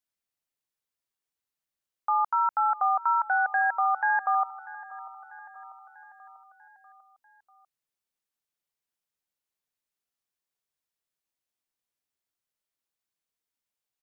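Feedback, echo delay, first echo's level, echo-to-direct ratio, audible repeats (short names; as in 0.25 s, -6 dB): 59%, 0.643 s, -18.5 dB, -16.5 dB, 4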